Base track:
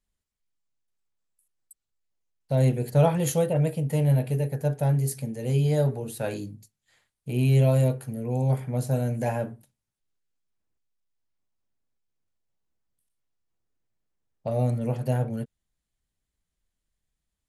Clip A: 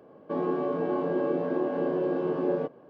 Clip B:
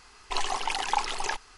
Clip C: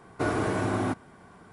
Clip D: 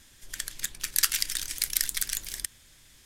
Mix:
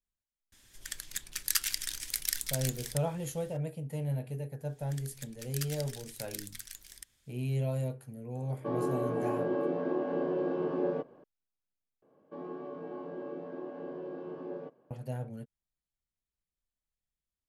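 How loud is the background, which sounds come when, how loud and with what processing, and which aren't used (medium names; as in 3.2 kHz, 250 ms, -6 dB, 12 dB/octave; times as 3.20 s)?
base track -12 dB
0.52 s: add D -5.5 dB
4.58 s: add D -15.5 dB, fades 0.10 s
8.35 s: add A -4 dB
12.02 s: replace with A -13.5 dB
not used: B, C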